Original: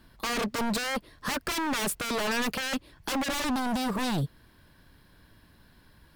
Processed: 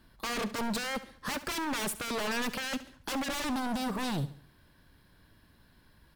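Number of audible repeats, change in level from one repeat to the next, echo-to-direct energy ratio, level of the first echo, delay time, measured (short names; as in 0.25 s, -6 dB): 3, -7.5 dB, -14.0 dB, -15.0 dB, 70 ms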